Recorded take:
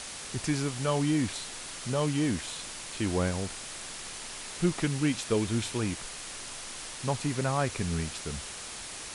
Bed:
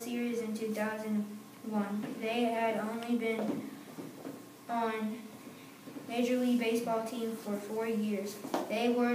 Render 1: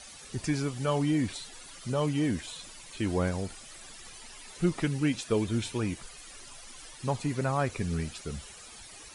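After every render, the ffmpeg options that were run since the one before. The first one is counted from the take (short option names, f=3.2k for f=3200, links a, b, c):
-af "afftdn=nr=13:nf=-41"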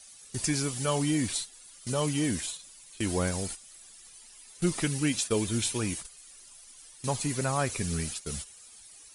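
-af "agate=range=-13dB:threshold=-40dB:ratio=16:detection=peak,aemphasis=mode=production:type=75fm"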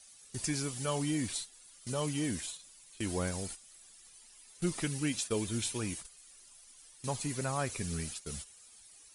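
-af "volume=-5.5dB"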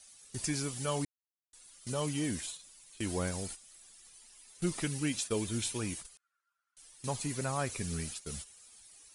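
-filter_complex "[0:a]asettb=1/sr,asplit=3[a][b][c];[a]atrim=end=6.174[d];[b]atrim=start=6.17:end=6.77,asetpts=PTS-STARTPTS,afade=t=in:d=0.004:c=qsin,afade=t=out:st=0.596:d=0.004:c=qsin,bandpass=f=1.4k:t=q:w=17[e];[c]atrim=start=6.766[f];[d][e]acrossfade=d=0.004:c1=hsin:c2=qsin[g];[g][f]acrossfade=d=0.004:c1=qsin:c2=hsin,asplit=3[h][i][j];[h]atrim=end=1.05,asetpts=PTS-STARTPTS,afade=t=out:st=1.046:d=0.004:c=hsin[k];[i]atrim=start=1.05:end=1.53,asetpts=PTS-STARTPTS,volume=0[l];[j]atrim=start=1.53,asetpts=PTS-STARTPTS,afade=t=in:d=0.004:c=hsin[m];[k][l][m]concat=n=3:v=0:a=1"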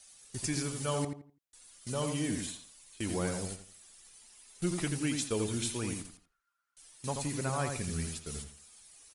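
-filter_complex "[0:a]asplit=2[a][b];[b]adelay=84,lowpass=f=2k:p=1,volume=-4.5dB,asplit=2[c][d];[d]adelay=84,lowpass=f=2k:p=1,volume=0.29,asplit=2[e][f];[f]adelay=84,lowpass=f=2k:p=1,volume=0.29,asplit=2[g][h];[h]adelay=84,lowpass=f=2k:p=1,volume=0.29[i];[a][c][e][g][i]amix=inputs=5:normalize=0"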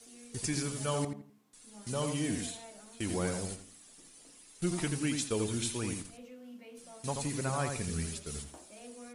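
-filter_complex "[1:a]volume=-20dB[a];[0:a][a]amix=inputs=2:normalize=0"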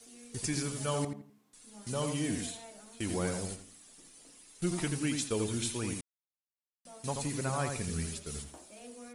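-filter_complex "[0:a]asplit=3[a][b][c];[a]atrim=end=6.01,asetpts=PTS-STARTPTS,afade=t=out:st=6.006:d=0.004:c=hsin[d];[b]atrim=start=6.01:end=6.85,asetpts=PTS-STARTPTS,volume=0[e];[c]atrim=start=6.85,asetpts=PTS-STARTPTS,afade=t=in:d=0.004:c=hsin[f];[d][e][f]concat=n=3:v=0:a=1"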